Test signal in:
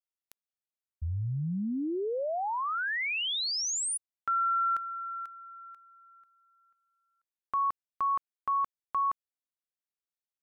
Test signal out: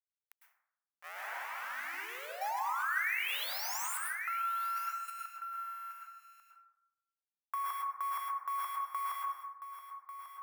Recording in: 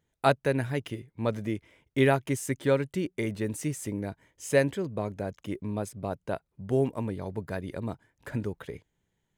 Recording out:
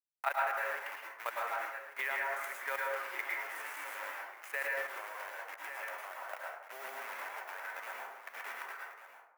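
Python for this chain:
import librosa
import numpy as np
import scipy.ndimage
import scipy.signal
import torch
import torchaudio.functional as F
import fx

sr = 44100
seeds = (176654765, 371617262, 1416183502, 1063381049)

p1 = fx.delta_hold(x, sr, step_db=-31.0)
p2 = scipy.signal.sosfilt(scipy.signal.butter(4, 830.0, 'highpass', fs=sr, output='sos'), p1)
p3 = p2 + fx.echo_single(p2, sr, ms=1143, db=-12.5, dry=0)
p4 = fx.level_steps(p3, sr, step_db=12)
p5 = fx.graphic_eq_10(p4, sr, hz=(2000, 4000, 8000), db=(7, -11, -8))
p6 = fx.rev_plate(p5, sr, seeds[0], rt60_s=0.8, hf_ratio=0.45, predelay_ms=95, drr_db=-3.0)
p7 = fx.over_compress(p6, sr, threshold_db=-36.0, ratio=-0.5)
p8 = p6 + (p7 * 10.0 ** (-1.5 / 20.0))
y = p8 * 10.0 ** (-5.5 / 20.0)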